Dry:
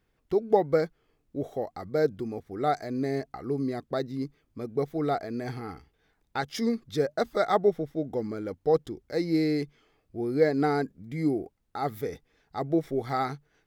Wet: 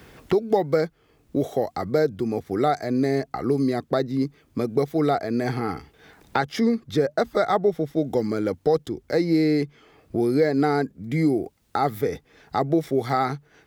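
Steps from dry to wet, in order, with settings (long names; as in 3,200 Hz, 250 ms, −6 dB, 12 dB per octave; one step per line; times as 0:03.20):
high-pass filter 51 Hz
in parallel at 0 dB: brickwall limiter −18.5 dBFS, peak gain reduction 9 dB
on the sum: multiband upward and downward compressor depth 70%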